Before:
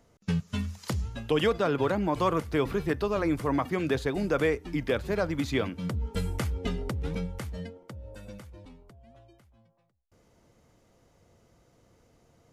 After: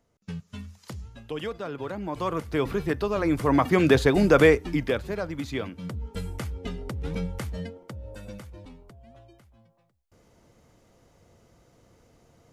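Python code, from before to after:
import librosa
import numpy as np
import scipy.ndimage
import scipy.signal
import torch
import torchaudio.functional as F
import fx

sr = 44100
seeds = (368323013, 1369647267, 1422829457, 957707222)

y = fx.gain(x, sr, db=fx.line((1.8, -8.0), (2.65, 1.5), (3.17, 1.5), (3.78, 9.0), (4.5, 9.0), (5.18, -3.0), (6.81, -3.0), (7.28, 3.5)))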